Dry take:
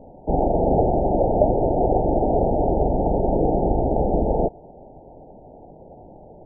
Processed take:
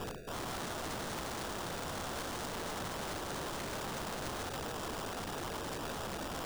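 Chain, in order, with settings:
reversed playback
downward compressor 6 to 1, threshold −33 dBFS, peak gain reduction 20 dB
reversed playback
brickwall limiter −32 dBFS, peak gain reduction 10 dB
formants moved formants −4 semitones
decimation without filtering 21×
flutter between parallel walls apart 9.3 metres, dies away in 0.3 s
wrap-around overflow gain 41.5 dB
level +6.5 dB

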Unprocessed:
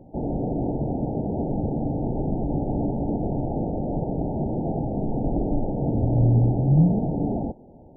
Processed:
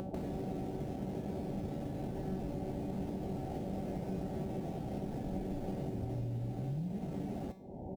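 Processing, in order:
in parallel at −11 dB: bit reduction 5 bits
on the sum: upward compression, threshold −25 dBFS
high-pass filter 94 Hz 6 dB per octave
downward compressor 10 to 1, threshold −31 dBFS, peak gain reduction 18.5 dB
low-shelf EQ 120 Hz +7.5 dB
tuned comb filter 190 Hz, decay 0.51 s, harmonics all, mix 80%
on a send: single-tap delay 621 ms −23 dB
on the sum: level +5 dB

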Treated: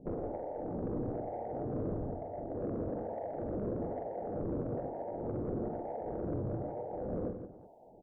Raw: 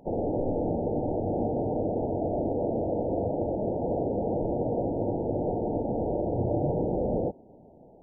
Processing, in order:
0:01.91–0:02.46: low-shelf EQ 240 Hz +12 dB
downward compressor 12 to 1, threshold −30 dBFS, peak gain reduction 11.5 dB
two-band tremolo in antiphase 1.1 Hz, depth 100%, crossover 550 Hz
soft clipping −32 dBFS, distortion −17 dB
multi-tap delay 45/135/166/361 ms −7.5/−14/−9/−19 dB
level +2 dB

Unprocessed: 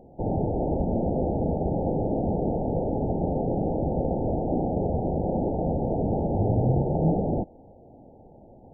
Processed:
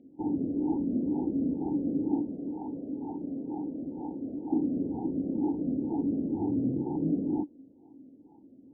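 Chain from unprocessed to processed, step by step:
0:02.22–0:04.52: tilt shelving filter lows −8 dB, about 880 Hz
formant filter swept between two vowels i-u 2.1 Hz
level +7 dB

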